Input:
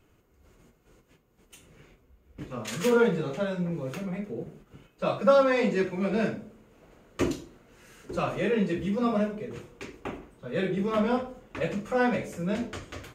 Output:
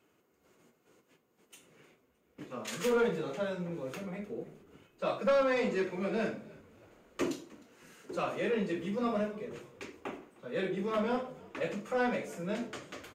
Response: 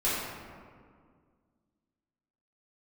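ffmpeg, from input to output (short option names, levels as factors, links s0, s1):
-filter_complex "[0:a]highpass=220,asoftclip=type=tanh:threshold=0.126,asplit=2[s0][s1];[s1]asplit=3[s2][s3][s4];[s2]adelay=308,afreqshift=-53,volume=0.075[s5];[s3]adelay=616,afreqshift=-106,volume=0.0316[s6];[s4]adelay=924,afreqshift=-159,volume=0.0132[s7];[s5][s6][s7]amix=inputs=3:normalize=0[s8];[s0][s8]amix=inputs=2:normalize=0,volume=0.668"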